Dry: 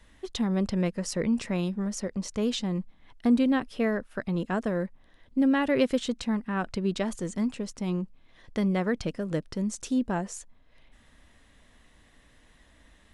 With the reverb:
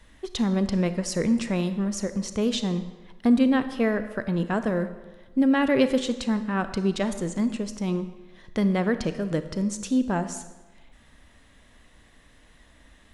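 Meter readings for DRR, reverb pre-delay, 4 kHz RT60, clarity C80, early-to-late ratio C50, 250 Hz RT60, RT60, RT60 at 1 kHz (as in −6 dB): 10.5 dB, 30 ms, 0.90 s, 13.0 dB, 11.0 dB, 1.1 s, 1.2 s, 1.2 s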